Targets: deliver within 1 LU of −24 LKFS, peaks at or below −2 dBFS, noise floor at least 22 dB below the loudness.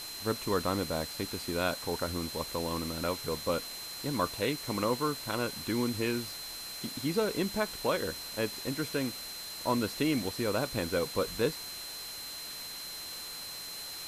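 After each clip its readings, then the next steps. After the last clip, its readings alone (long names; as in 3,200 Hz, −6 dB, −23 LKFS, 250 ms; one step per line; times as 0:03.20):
interfering tone 4,100 Hz; level of the tone −42 dBFS; background noise floor −42 dBFS; target noise floor −56 dBFS; integrated loudness −33.5 LKFS; sample peak −15.5 dBFS; target loudness −24.0 LKFS
→ notch filter 4,100 Hz, Q 30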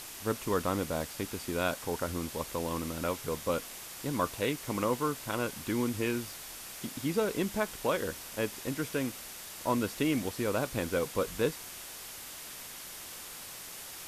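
interfering tone none found; background noise floor −45 dBFS; target noise floor −56 dBFS
→ noise reduction from a noise print 11 dB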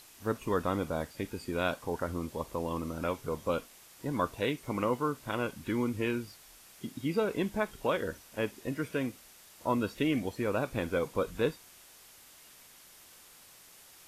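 background noise floor −56 dBFS; integrated loudness −33.5 LKFS; sample peak −16.0 dBFS; target loudness −24.0 LKFS
→ level +9.5 dB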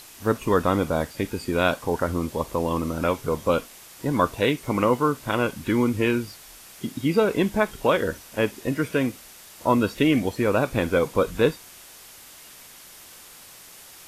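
integrated loudness −24.0 LKFS; sample peak −6.5 dBFS; background noise floor −47 dBFS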